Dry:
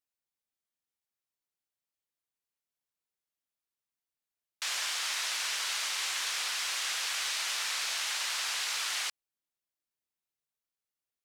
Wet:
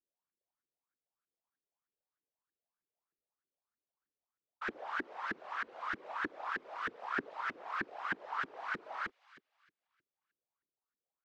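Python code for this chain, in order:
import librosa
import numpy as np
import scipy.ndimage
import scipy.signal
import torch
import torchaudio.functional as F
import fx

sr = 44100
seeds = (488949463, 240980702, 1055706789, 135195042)

y = fx.echo_wet_highpass(x, sr, ms=77, feedback_pct=74, hz=2500.0, wet_db=-8.0)
y = fx.filter_lfo_lowpass(y, sr, shape='saw_up', hz=3.2, low_hz=290.0, high_hz=1700.0, q=6.9)
y = fx.whisperise(y, sr, seeds[0])
y = y * librosa.db_to_amplitude(-5.0)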